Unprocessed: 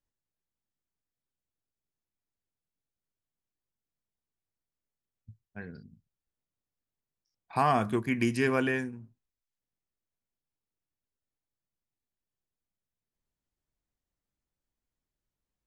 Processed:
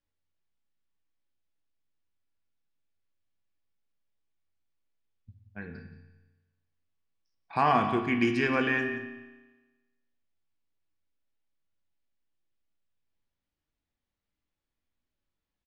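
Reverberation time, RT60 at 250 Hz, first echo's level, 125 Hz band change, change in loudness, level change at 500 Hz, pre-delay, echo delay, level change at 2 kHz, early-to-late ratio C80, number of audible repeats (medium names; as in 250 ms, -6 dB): 1.2 s, 1.2 s, -13.5 dB, -2.0 dB, +1.5 dB, 0.0 dB, 3 ms, 177 ms, +4.0 dB, 8.0 dB, 1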